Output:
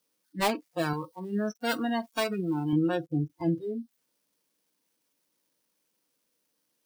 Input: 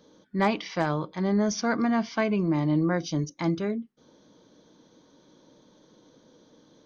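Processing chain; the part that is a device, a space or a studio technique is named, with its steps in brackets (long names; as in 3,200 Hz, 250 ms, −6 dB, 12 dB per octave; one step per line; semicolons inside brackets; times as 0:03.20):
budget class-D amplifier (gap after every zero crossing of 0.2 ms; spike at every zero crossing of −28 dBFS)
noise reduction from a noise print of the clip's start 30 dB
0:00.93–0:02.73: spectral tilt +2 dB per octave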